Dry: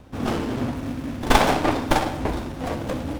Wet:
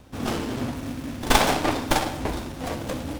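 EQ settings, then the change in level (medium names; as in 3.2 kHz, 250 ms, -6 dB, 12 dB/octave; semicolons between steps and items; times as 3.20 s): treble shelf 3.1 kHz +8 dB; -3.0 dB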